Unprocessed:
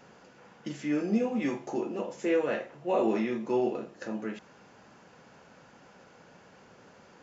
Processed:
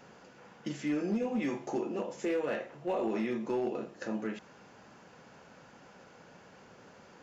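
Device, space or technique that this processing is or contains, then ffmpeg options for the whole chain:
limiter into clipper: -af "alimiter=limit=-23.5dB:level=0:latency=1:release=173,asoftclip=type=hard:threshold=-25.5dB"

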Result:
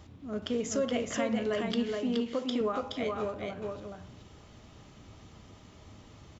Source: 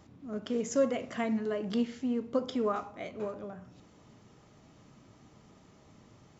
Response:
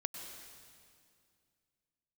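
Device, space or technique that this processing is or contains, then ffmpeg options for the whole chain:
car stereo with a boomy subwoofer: -filter_complex "[0:a]lowshelf=frequency=110:width_type=q:width=1.5:gain=7,alimiter=level_in=0.5dB:limit=-24dB:level=0:latency=1:release=219,volume=-0.5dB,asettb=1/sr,asplit=3[link_01][link_02][link_03];[link_01]atrim=end=1.944[link_04];[link_02]atrim=start=1.94:end=2.61,asetpts=PTS-STARTPTS,afade=type=in:duration=0.004:curve=qsin,afade=type=out:start_time=0.666:duration=0.004:curve=qsin,highpass=210[link_05];[link_03]atrim=start=2.606[link_06];[link_04][link_05]acrossfade=duration=0.004:curve1=hsin:curve2=qsin[link_07];[link_07][link_06]acrossfade=duration=0.004:curve1=qsin:curve2=hsin,equalizer=frequency=3300:width_type=o:width=0.87:gain=5.5,aecho=1:1:422:0.668,volume=2.5dB"

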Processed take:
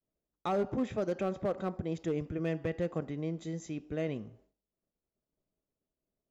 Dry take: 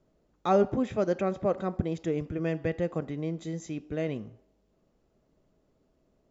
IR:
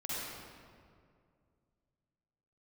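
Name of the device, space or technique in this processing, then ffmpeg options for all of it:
limiter into clipper: -af "alimiter=limit=-19dB:level=0:latency=1:release=99,asoftclip=type=hard:threshold=-22dB,agate=range=-33dB:threshold=-57dB:ratio=3:detection=peak,volume=-3dB"

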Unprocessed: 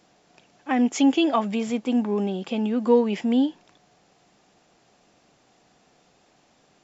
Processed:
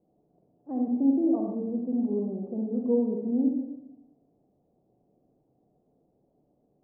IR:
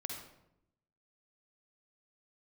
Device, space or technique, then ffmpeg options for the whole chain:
next room: -filter_complex "[0:a]lowpass=frequency=590:width=0.5412,lowpass=frequency=590:width=1.3066[link_01];[1:a]atrim=start_sample=2205[link_02];[link_01][link_02]afir=irnorm=-1:irlink=0,volume=-4.5dB"

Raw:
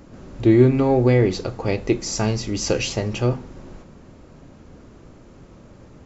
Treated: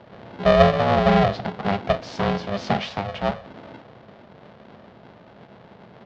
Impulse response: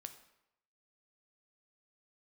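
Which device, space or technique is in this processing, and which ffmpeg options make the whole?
ring modulator pedal into a guitar cabinet: -filter_complex "[0:a]asettb=1/sr,asplit=3[link_01][link_02][link_03];[link_01]atrim=end=2.794[link_04];[link_02]atrim=start=2.79:end=3.46,asetpts=PTS-STARTPTS,afade=type=in:duration=0.004:curve=qsin,afade=type=out:start_time=0.666:duration=0.004:curve=qsin,highpass=frequency=180:width=0.5412,highpass=frequency=180:width=1.3066[link_05];[link_03]atrim=start=3.456[link_06];[link_04][link_05]acrossfade=duration=0.004:curve1=hsin:curve2=qsin[link_07];[link_07][link_06]acrossfade=duration=0.004:curve1=qsin:curve2=hsin,aeval=exprs='val(0)*sgn(sin(2*PI*300*n/s))':channel_layout=same,highpass=90,equalizer=frequency=120:width_type=q:width=4:gain=5,equalizer=frequency=200:width_type=q:width=4:gain=6,equalizer=frequency=310:width_type=q:width=4:gain=-6,equalizer=frequency=680:width_type=q:width=4:gain=5,equalizer=frequency=2500:width_type=q:width=4:gain=-3,lowpass=frequency=3900:width=0.5412,lowpass=frequency=3900:width=1.3066,volume=-2.5dB"

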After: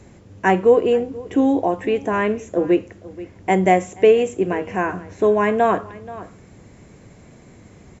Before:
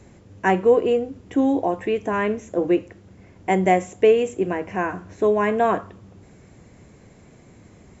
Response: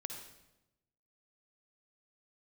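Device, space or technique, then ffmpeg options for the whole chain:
ducked delay: -filter_complex "[0:a]asplit=3[link_01][link_02][link_03];[link_02]adelay=480,volume=-7dB[link_04];[link_03]apad=whole_len=374011[link_05];[link_04][link_05]sidechaincompress=threshold=-33dB:ratio=5:attack=29:release=949[link_06];[link_01][link_06]amix=inputs=2:normalize=0,volume=2.5dB"

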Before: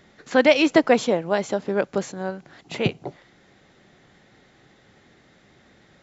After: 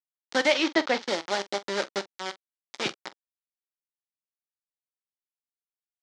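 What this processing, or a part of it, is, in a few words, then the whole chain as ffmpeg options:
hand-held game console: -filter_complex "[0:a]acrusher=bits=3:mix=0:aa=0.000001,highpass=460,equalizer=frequency=470:width_type=q:width=4:gain=-9,equalizer=frequency=680:width_type=q:width=4:gain=-8,equalizer=frequency=1100:width_type=q:width=4:gain=-6,equalizer=frequency=1600:width_type=q:width=4:gain=-4,equalizer=frequency=2600:width_type=q:width=4:gain=-7,lowpass=frequency=5900:width=0.5412,lowpass=frequency=5900:width=1.3066,asettb=1/sr,asplit=3[link_01][link_02][link_03];[link_01]atrim=end=0.524[link_04];[link_02]atrim=start=0.52:end=1.07,asetpts=PTS-STARTPTS,afade=type=in:duration=0.004:curve=qsin,afade=type=out:start_time=0.546:duration=0.004:curve=qsin,lowpass=5100[link_05];[link_03]atrim=start=1.066[link_06];[link_04][link_05]acrossfade=duration=0.004:curve1=hsin:curve2=qsin[link_07];[link_07][link_06]acrossfade=duration=0.004:curve1=qsin:curve2=hsin,aecho=1:1:15|45:0.178|0.15"

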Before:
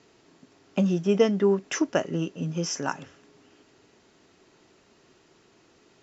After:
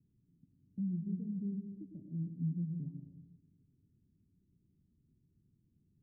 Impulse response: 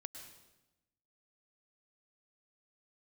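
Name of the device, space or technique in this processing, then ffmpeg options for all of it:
club heard from the street: -filter_complex "[0:a]alimiter=limit=-18dB:level=0:latency=1:release=356,lowpass=frequency=180:width=0.5412,lowpass=frequency=180:width=1.3066[link_01];[1:a]atrim=start_sample=2205[link_02];[link_01][link_02]afir=irnorm=-1:irlink=0,volume=2.5dB"

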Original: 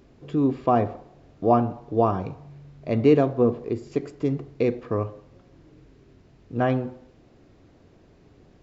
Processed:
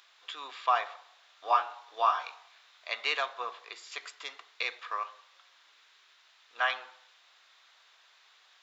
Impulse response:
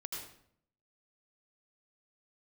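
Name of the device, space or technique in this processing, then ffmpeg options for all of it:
headphones lying on a table: -filter_complex "[0:a]highpass=frequency=1100:width=0.5412,highpass=frequency=1100:width=1.3066,equalizer=frequency=3600:width_type=o:width=0.44:gain=9,asettb=1/sr,asplit=3[link_01][link_02][link_03];[link_01]atrim=end=1.444[link_04];[link_02]atrim=start=1.44:end=2.89,asetpts=PTS-STARTPTS,afade=type=in:duration=0.004:curve=qsin,afade=type=out:start_time=1.446:duration=0.004:curve=qsin,asplit=2[link_05][link_06];[link_06]adelay=23,volume=-5.5dB[link_07];[link_05][link_07]amix=inputs=2:normalize=0,atrim=end_sample=63945[link_08];[link_03]atrim=start=2.886[link_09];[link_04][link_08]acrossfade=duration=0.004:curve1=hsin:curve2=qsin[link_10];[link_10][link_09]acrossfade=duration=0.004:curve1=qsin:curve2=hsin,volume=5.5dB"

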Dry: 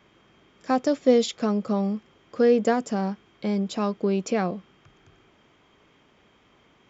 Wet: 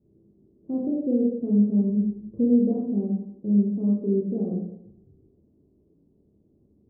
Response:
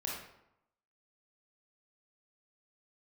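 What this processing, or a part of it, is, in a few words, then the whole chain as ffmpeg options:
next room: -filter_complex "[0:a]asplit=3[link_01][link_02][link_03];[link_01]afade=type=out:start_time=1.89:duration=0.02[link_04];[link_02]aemphasis=mode=reproduction:type=bsi,afade=type=in:start_time=1.89:duration=0.02,afade=type=out:start_time=2.49:duration=0.02[link_05];[link_03]afade=type=in:start_time=2.49:duration=0.02[link_06];[link_04][link_05][link_06]amix=inputs=3:normalize=0,lowpass=frequency=380:width=0.5412,lowpass=frequency=380:width=1.3066[link_07];[1:a]atrim=start_sample=2205[link_08];[link_07][link_08]afir=irnorm=-1:irlink=0"

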